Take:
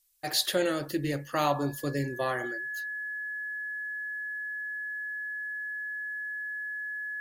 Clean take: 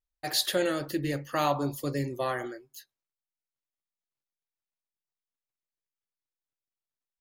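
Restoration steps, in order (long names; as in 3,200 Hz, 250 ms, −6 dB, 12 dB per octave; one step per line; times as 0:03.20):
notch filter 1,700 Hz, Q 30
downward expander −30 dBFS, range −21 dB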